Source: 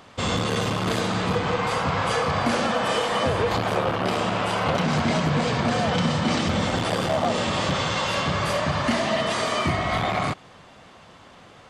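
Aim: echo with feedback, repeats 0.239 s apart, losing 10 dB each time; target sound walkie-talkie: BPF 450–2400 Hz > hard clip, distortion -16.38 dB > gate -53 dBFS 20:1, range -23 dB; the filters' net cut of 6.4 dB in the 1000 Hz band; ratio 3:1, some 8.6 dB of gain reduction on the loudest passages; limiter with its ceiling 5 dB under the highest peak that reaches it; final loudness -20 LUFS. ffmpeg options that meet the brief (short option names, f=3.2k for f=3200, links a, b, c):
-af "equalizer=f=1k:t=o:g=-8,acompressor=threshold=-31dB:ratio=3,alimiter=level_in=1.5dB:limit=-24dB:level=0:latency=1,volume=-1.5dB,highpass=450,lowpass=2.4k,aecho=1:1:239|478|717|956:0.316|0.101|0.0324|0.0104,asoftclip=type=hard:threshold=-33.5dB,agate=range=-23dB:threshold=-53dB:ratio=20,volume=19dB"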